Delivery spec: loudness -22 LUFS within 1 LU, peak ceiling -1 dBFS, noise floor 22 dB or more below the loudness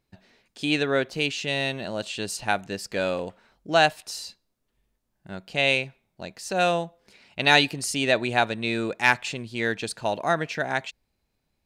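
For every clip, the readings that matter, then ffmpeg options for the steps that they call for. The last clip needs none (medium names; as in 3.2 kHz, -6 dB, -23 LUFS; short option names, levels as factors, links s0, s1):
loudness -25.0 LUFS; peak level -4.5 dBFS; loudness target -22.0 LUFS
-> -af "volume=1.41"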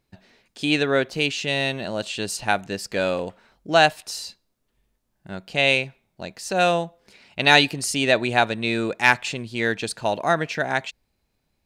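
loudness -22.0 LUFS; peak level -1.5 dBFS; noise floor -74 dBFS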